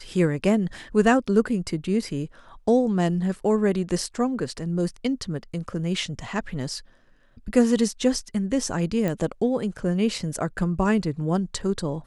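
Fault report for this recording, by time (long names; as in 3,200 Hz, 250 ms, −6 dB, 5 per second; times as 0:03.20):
0:09.08: click −14 dBFS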